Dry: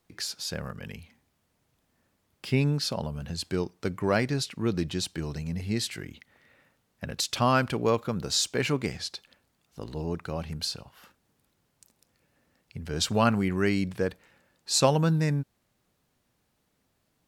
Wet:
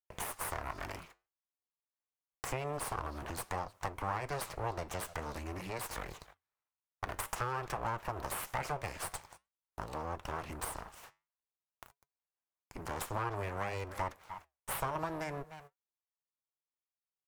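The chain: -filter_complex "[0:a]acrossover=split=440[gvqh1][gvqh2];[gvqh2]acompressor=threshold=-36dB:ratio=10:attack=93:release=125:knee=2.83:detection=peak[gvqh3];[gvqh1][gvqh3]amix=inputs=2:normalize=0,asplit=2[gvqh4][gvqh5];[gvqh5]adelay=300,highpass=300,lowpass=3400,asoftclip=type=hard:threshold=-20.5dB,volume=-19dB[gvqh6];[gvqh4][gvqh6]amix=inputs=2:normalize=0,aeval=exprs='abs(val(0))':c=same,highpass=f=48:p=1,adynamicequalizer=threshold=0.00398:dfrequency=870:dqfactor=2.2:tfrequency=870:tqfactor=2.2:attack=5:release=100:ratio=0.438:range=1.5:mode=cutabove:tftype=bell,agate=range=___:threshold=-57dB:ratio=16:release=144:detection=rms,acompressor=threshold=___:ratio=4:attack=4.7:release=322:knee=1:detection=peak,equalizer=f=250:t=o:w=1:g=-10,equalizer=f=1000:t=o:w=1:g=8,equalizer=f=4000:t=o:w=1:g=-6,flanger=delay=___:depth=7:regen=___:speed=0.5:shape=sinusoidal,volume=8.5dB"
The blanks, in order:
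-35dB, -38dB, 3.5, -80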